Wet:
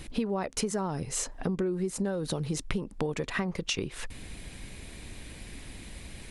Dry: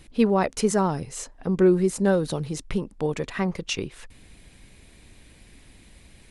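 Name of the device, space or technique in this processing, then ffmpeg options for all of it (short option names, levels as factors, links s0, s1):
serial compression, leveller first: -af "acompressor=threshold=0.0631:ratio=2,acompressor=threshold=0.0178:ratio=6,volume=2.24"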